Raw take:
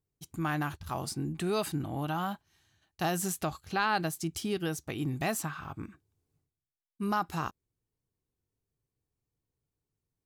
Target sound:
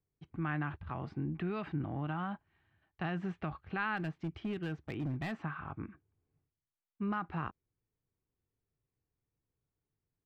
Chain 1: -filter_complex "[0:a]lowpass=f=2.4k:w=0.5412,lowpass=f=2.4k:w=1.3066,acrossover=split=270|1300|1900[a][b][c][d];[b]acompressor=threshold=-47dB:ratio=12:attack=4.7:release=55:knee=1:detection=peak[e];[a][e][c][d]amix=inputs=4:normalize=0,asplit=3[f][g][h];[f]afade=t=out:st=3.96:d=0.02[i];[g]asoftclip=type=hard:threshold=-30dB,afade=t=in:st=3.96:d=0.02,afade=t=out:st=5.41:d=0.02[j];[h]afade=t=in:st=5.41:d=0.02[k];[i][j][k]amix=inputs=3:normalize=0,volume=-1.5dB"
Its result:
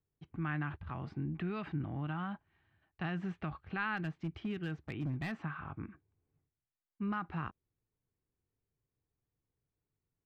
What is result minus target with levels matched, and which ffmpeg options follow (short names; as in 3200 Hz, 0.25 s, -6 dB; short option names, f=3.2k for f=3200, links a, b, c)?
compressor: peak gain reduction +6 dB
-filter_complex "[0:a]lowpass=f=2.4k:w=0.5412,lowpass=f=2.4k:w=1.3066,acrossover=split=270|1300|1900[a][b][c][d];[b]acompressor=threshold=-40.5dB:ratio=12:attack=4.7:release=55:knee=1:detection=peak[e];[a][e][c][d]amix=inputs=4:normalize=0,asplit=3[f][g][h];[f]afade=t=out:st=3.96:d=0.02[i];[g]asoftclip=type=hard:threshold=-30dB,afade=t=in:st=3.96:d=0.02,afade=t=out:st=5.41:d=0.02[j];[h]afade=t=in:st=5.41:d=0.02[k];[i][j][k]amix=inputs=3:normalize=0,volume=-1.5dB"